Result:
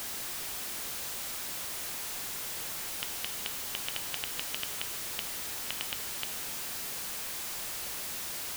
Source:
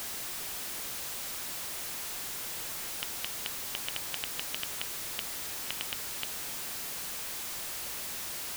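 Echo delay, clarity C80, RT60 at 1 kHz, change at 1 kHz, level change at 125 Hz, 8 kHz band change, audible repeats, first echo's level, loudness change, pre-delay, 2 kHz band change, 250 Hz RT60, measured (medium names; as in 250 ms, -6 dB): no echo, 12.5 dB, 1.6 s, +0.5 dB, +0.5 dB, +0.5 dB, no echo, no echo, +0.5 dB, 12 ms, +0.5 dB, 1.6 s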